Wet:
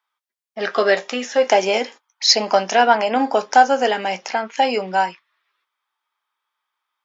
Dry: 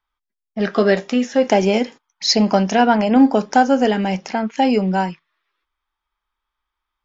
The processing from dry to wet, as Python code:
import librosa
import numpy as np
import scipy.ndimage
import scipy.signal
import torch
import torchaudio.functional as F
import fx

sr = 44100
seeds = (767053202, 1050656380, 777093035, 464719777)

y = scipy.signal.sosfilt(scipy.signal.butter(2, 560.0, 'highpass', fs=sr, output='sos'), x)
y = fx.doubler(y, sr, ms=17.0, db=-14.0)
y = y * librosa.db_to_amplitude(3.0)